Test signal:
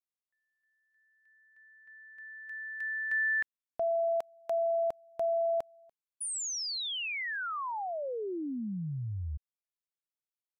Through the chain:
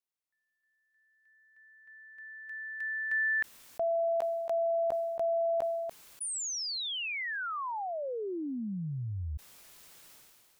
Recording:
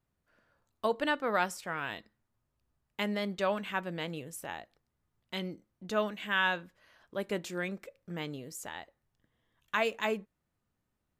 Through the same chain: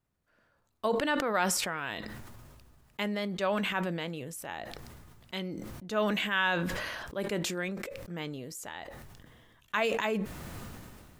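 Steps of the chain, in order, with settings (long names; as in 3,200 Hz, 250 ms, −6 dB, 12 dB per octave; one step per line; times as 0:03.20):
level that may fall only so fast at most 26 dB per second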